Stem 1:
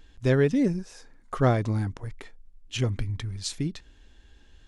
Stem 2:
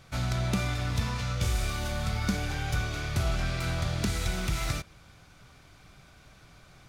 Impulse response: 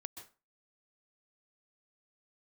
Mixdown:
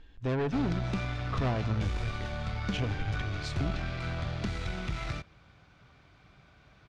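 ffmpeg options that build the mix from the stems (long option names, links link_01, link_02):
-filter_complex "[0:a]asoftclip=type=tanh:threshold=-25dB,volume=-2.5dB,asplit=2[link_01][link_02];[link_02]volume=-3.5dB[link_03];[1:a]highpass=42,adelay=400,volume=-2dB[link_04];[2:a]atrim=start_sample=2205[link_05];[link_03][link_05]afir=irnorm=-1:irlink=0[link_06];[link_01][link_04][link_06]amix=inputs=3:normalize=0,lowpass=3600,aeval=exprs='(tanh(11.2*val(0)+0.4)-tanh(0.4))/11.2':channel_layout=same"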